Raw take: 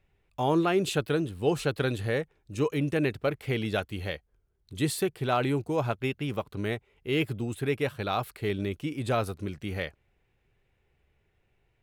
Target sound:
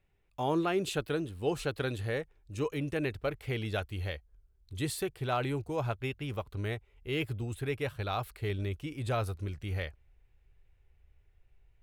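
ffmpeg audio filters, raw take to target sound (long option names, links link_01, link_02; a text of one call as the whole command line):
ffmpeg -i in.wav -af "asubboost=boost=8:cutoff=67,volume=-4.5dB" out.wav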